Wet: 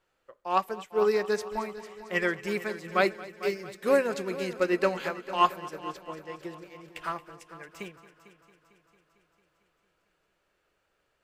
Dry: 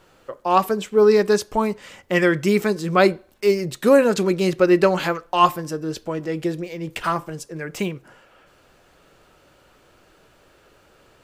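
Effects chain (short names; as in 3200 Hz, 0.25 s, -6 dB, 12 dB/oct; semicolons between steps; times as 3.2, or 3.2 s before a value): ten-band EQ 125 Hz -5 dB, 250 Hz -4 dB, 2000 Hz +4 dB; multi-head echo 0.225 s, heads first and second, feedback 62%, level -13.5 dB; upward expander 1.5:1, over -38 dBFS; gain -7 dB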